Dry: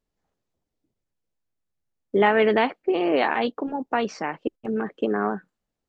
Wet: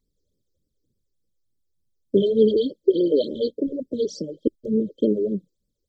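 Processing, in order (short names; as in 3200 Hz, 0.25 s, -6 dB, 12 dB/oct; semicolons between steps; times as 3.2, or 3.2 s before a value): brick-wall FIR band-stop 610–3100 Hz; vibrato 8 Hz 21 cents; phaser stages 12, 3.4 Hz, lowest notch 180–1300 Hz; gain +6.5 dB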